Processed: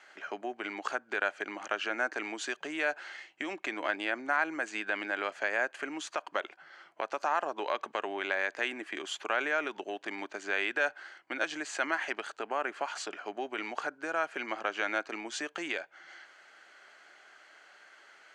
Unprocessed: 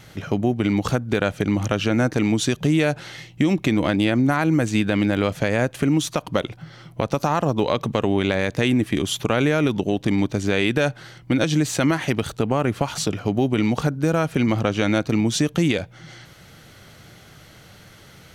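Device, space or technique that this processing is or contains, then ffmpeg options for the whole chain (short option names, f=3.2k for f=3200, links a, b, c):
phone speaker on a table: -af "highpass=f=440:w=0.5412,highpass=f=440:w=1.3066,equalizer=f=490:t=q:w=4:g=-10,equalizer=f=1.6k:t=q:w=4:g=7,equalizer=f=3.7k:t=q:w=4:g=-9,equalizer=f=5.6k:t=q:w=4:g=-9,lowpass=f=7k:w=0.5412,lowpass=f=7k:w=1.3066,volume=-7dB"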